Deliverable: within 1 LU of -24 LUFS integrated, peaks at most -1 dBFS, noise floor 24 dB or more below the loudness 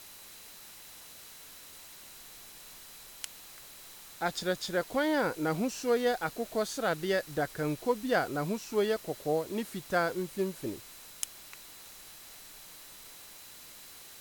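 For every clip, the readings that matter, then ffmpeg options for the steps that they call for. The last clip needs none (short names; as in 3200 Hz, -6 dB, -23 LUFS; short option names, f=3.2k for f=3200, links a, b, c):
steady tone 4000 Hz; tone level -60 dBFS; noise floor -51 dBFS; noise floor target -56 dBFS; loudness -32.0 LUFS; peak -12.5 dBFS; loudness target -24.0 LUFS
-> -af "bandreject=f=4k:w=30"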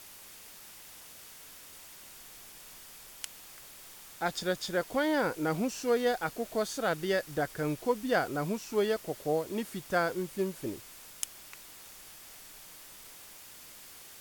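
steady tone none; noise floor -51 dBFS; noise floor target -56 dBFS
-> -af "afftdn=nr=6:nf=-51"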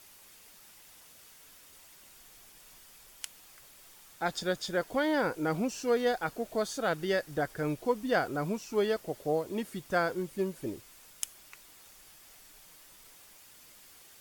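noise floor -56 dBFS; noise floor target -57 dBFS
-> -af "afftdn=nr=6:nf=-56"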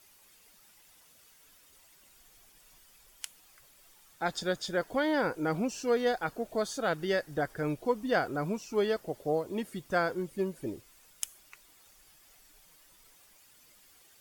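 noise floor -61 dBFS; loudness -32.0 LUFS; peak -12.5 dBFS; loudness target -24.0 LUFS
-> -af "volume=8dB"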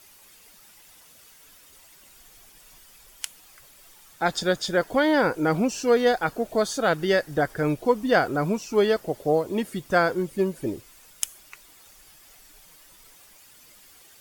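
loudness -24.0 LUFS; peak -4.5 dBFS; noise floor -53 dBFS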